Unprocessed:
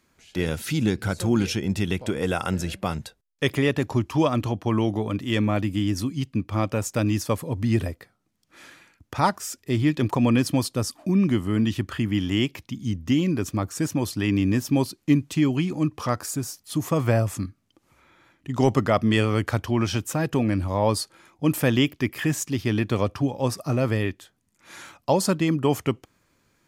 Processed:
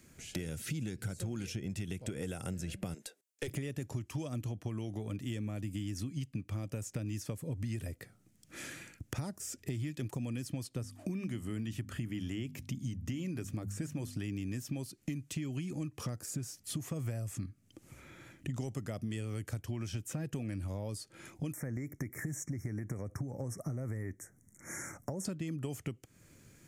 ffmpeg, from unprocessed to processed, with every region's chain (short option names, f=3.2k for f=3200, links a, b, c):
-filter_complex "[0:a]asettb=1/sr,asplit=3[a][b][c];[a]atrim=end=2.944[d];[b]atrim=start=2.94:end=3.48,asetpts=PTS-STARTPTS,afade=t=in:d=0.004:c=qsin,afade=t=out:st=0.536:d=0.004:c=qsin,highpass=f=310:w=0.5412,highpass=f=310:w=1.3066,aeval=exprs='(tanh(8.91*val(0)+0.4)-tanh(0.4))/8.91':c=same[e];[c]atrim=start=3.476[f];[d][e]acrossfade=d=0.004:c1=hsin:c2=qsin[g];[g][f]acrossfade=d=0.004:c1=qsin:c2=hsin,asettb=1/sr,asplit=3[h][i][j];[h]atrim=end=10.674[k];[i]atrim=start=10.67:end=14.16,asetpts=PTS-STARTPTS,afade=t=in:d=0.004:c=qsin,afade=t=out:st=3.486:d=0.004:c=qsin,bandreject=f=50:t=h:w=6,bandreject=f=100:t=h:w=6,bandreject=f=150:t=h:w=6,bandreject=f=200:t=h:w=6,bandreject=f=250:t=h:w=6,acrossover=split=3000[l][m];[m]acompressor=threshold=-41dB:ratio=4:attack=1:release=60[n];[l][n]amix=inputs=2:normalize=0[o];[j]atrim=start=14.156[p];[k][o]acrossfade=d=0.004:c1=hsin:c2=qsin[q];[q][p]acrossfade=d=0.004:c1=qsin:c2=hsin,asettb=1/sr,asplit=3[r][s][t];[r]atrim=end=21.534[u];[s]atrim=start=21.53:end=25.25,asetpts=PTS-STARTPTS,afade=t=in:d=0.004:c=qsin,afade=t=out:st=3.716:d=0.004:c=qsin,acompressor=threshold=-26dB:ratio=4:attack=3.2:release=140:knee=1:detection=peak,asuperstop=centerf=3500:order=20:qfactor=1.1[v];[t]atrim=start=25.246[w];[u][v]acrossfade=d=0.004:c1=hsin:c2=qsin[x];[x][w]acrossfade=d=0.004:c1=qsin:c2=hsin,acrossover=split=660|5100[y][z][aa];[y]acompressor=threshold=-31dB:ratio=4[ab];[z]acompressor=threshold=-38dB:ratio=4[ac];[aa]acompressor=threshold=-46dB:ratio=4[ad];[ab][ac][ad]amix=inputs=3:normalize=0,equalizer=f=125:t=o:w=1:g=6,equalizer=f=1k:t=o:w=1:g=-11,equalizer=f=4k:t=o:w=1:g=-6,equalizer=f=8k:t=o:w=1:g=5,acompressor=threshold=-46dB:ratio=3,volume=6dB"